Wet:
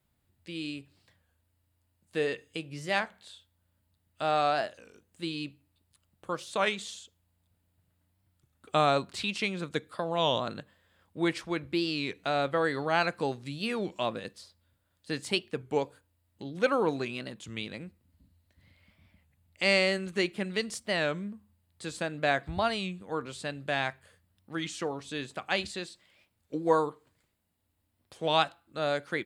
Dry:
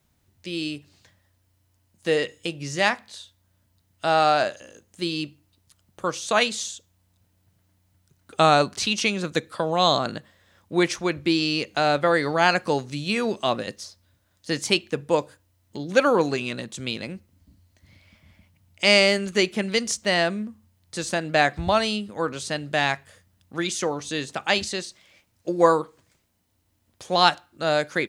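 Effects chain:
parametric band 6,200 Hz −10.5 dB 0.38 octaves
wrong playback speed 25 fps video run at 24 fps
wow of a warped record 33 1/3 rpm, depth 160 cents
level −7.5 dB

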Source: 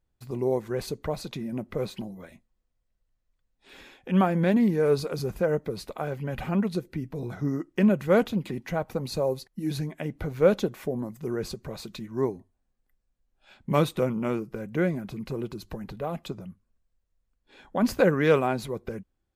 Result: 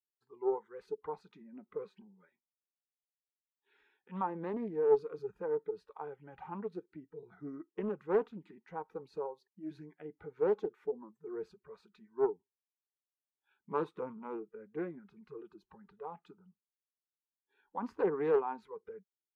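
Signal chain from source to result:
noise reduction from a noise print of the clip's start 18 dB
pair of resonant band-passes 610 Hz, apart 1.1 octaves
highs frequency-modulated by the lows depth 0.19 ms

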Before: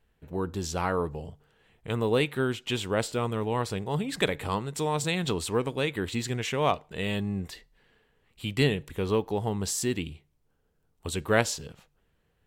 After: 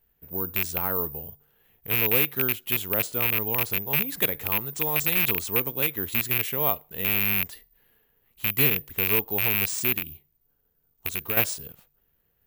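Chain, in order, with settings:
loose part that buzzes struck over −31 dBFS, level −11 dBFS
0:09.97–0:11.37: downward compressor 6 to 1, threshold −26 dBFS, peak gain reduction 9 dB
bad sample-rate conversion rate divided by 3×, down none, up zero stuff
level −4 dB

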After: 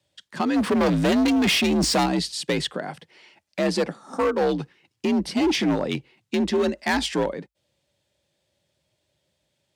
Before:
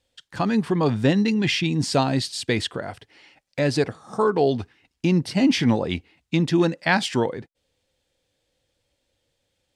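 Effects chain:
0:00.56–0:02.06: power curve on the samples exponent 0.7
gain into a clipping stage and back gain 17.5 dB
frequency shifter +53 Hz

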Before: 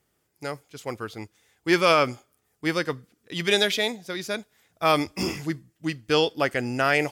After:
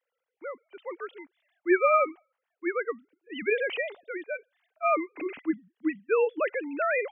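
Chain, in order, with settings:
three sine waves on the formant tracks
level −3.5 dB

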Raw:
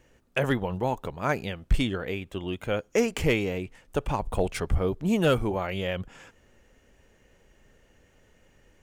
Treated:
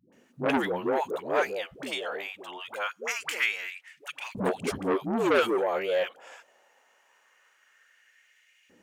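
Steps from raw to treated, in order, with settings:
all-pass dispersion highs, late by 126 ms, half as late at 480 Hz
auto-filter high-pass saw up 0.23 Hz 200–2,500 Hz
saturating transformer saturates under 1,600 Hz

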